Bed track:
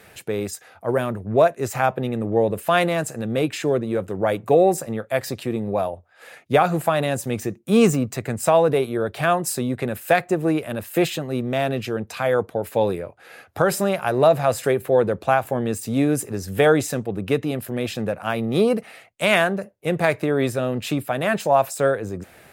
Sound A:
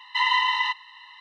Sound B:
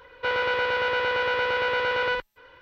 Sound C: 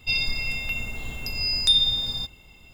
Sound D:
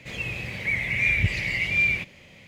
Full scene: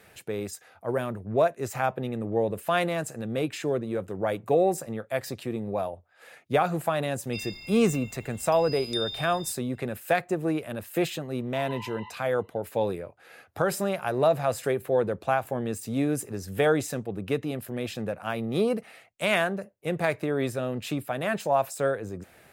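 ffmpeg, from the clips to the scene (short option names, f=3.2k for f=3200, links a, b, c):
-filter_complex "[0:a]volume=-6.5dB[a];[3:a]highpass=f=92:p=1[b];[1:a]asplit=3[c][d][e];[c]bandpass=f=300:t=q:w=8,volume=0dB[f];[d]bandpass=f=870:t=q:w=8,volume=-6dB[g];[e]bandpass=f=2.24k:t=q:w=8,volume=-9dB[h];[f][g][h]amix=inputs=3:normalize=0[i];[b]atrim=end=2.73,asetpts=PTS-STARTPTS,volume=-14dB,afade=t=in:d=0.004:c=hsin,afade=t=out:st=2.726:d=0.004:c=hsin,adelay=7260[j];[i]atrim=end=1.2,asetpts=PTS-STARTPTS,volume=-5dB,afade=t=in:d=0.004:c=hsin,afade=t=out:st=1.196:d=0.004:c=hsin,adelay=501858S[k];[a][j][k]amix=inputs=3:normalize=0"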